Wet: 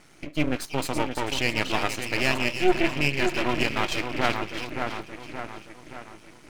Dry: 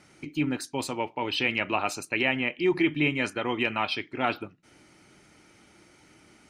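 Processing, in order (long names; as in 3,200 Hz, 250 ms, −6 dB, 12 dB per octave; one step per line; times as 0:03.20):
echo with a time of its own for lows and highs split 2,000 Hz, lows 573 ms, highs 329 ms, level −6 dB
in parallel at +1.5 dB: speech leveller within 3 dB
0:02.24–0:03.63: on the sum: EQ curve with evenly spaced ripples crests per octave 1.4, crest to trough 10 dB
half-wave rectification
level −2.5 dB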